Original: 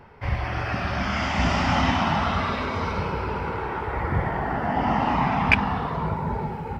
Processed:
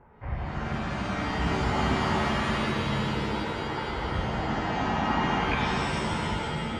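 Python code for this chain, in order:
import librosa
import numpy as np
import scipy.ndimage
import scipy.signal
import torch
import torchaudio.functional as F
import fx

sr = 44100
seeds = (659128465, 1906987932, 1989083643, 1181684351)

y = scipy.signal.sosfilt(scipy.signal.butter(2, 1500.0, 'lowpass', fs=sr, output='sos'), x)
y = fx.rev_shimmer(y, sr, seeds[0], rt60_s=1.9, semitones=7, shimmer_db=-2, drr_db=0.5)
y = y * 10.0 ** (-7.5 / 20.0)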